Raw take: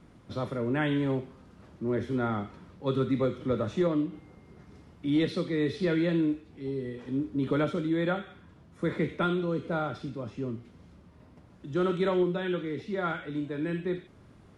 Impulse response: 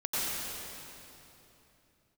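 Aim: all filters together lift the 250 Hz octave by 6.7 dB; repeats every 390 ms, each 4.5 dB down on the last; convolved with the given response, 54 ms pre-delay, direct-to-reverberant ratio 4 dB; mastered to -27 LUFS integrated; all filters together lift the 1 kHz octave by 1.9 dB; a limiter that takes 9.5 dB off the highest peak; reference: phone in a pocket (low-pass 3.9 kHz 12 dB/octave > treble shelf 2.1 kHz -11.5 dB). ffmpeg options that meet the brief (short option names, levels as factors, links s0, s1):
-filter_complex "[0:a]equalizer=f=250:t=o:g=9,equalizer=f=1000:t=o:g=6,alimiter=limit=0.1:level=0:latency=1,aecho=1:1:390|780|1170|1560|1950|2340|2730|3120|3510:0.596|0.357|0.214|0.129|0.0772|0.0463|0.0278|0.0167|0.01,asplit=2[s0][s1];[1:a]atrim=start_sample=2205,adelay=54[s2];[s1][s2]afir=irnorm=-1:irlink=0,volume=0.224[s3];[s0][s3]amix=inputs=2:normalize=0,lowpass=3900,highshelf=f=2100:g=-11.5,volume=0.891"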